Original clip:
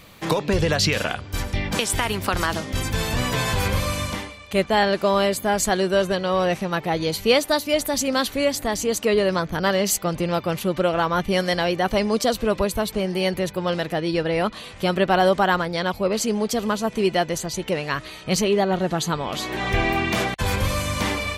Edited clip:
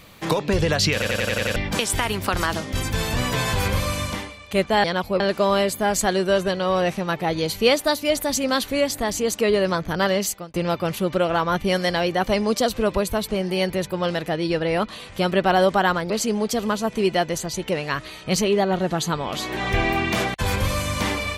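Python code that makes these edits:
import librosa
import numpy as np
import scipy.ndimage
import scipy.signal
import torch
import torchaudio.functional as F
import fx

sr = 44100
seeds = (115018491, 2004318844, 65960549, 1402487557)

y = fx.edit(x, sr, fx.stutter_over(start_s=0.93, slice_s=0.09, count=7),
    fx.fade_out_span(start_s=9.78, length_s=0.4),
    fx.move(start_s=15.74, length_s=0.36, to_s=4.84), tone=tone)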